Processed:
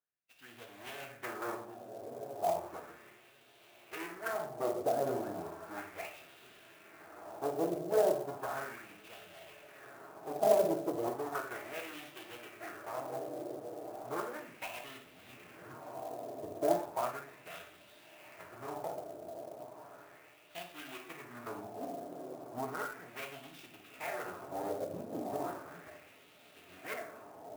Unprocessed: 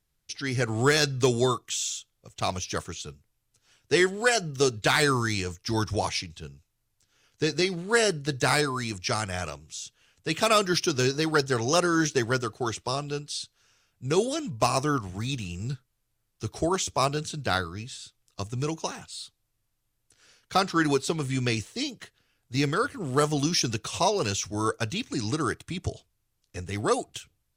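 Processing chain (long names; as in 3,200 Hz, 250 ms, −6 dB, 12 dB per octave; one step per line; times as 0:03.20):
running median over 41 samples
hard clipping −22.5 dBFS, distortion −14 dB
high-pass filter 98 Hz 6 dB per octave
feedback delay with all-pass diffusion 1,370 ms, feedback 66%, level −11.5 dB
rectangular room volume 150 cubic metres, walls mixed, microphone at 0.81 metres
LFO wah 0.35 Hz 570–3,300 Hz, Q 2.3
dynamic equaliser 4,700 Hz, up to −5 dB, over −60 dBFS, Q 1.2
phase-vocoder pitch shift with formants kept −1.5 semitones
parametric band 710 Hz +6.5 dB 0.27 octaves
converter with an unsteady clock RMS 0.029 ms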